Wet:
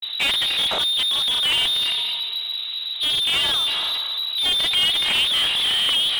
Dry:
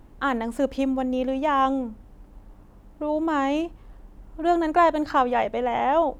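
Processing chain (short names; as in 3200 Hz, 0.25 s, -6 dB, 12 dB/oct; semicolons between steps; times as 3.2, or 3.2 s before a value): grains 0.1 s, grains 22/s, spray 27 ms, pitch spread up and down by 0 st; inverted band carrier 3900 Hz; reverb RT60 1.6 s, pre-delay 0.187 s, DRR 15 dB; overdrive pedal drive 35 dB, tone 1200 Hz, clips at -9 dBFS; gain +3.5 dB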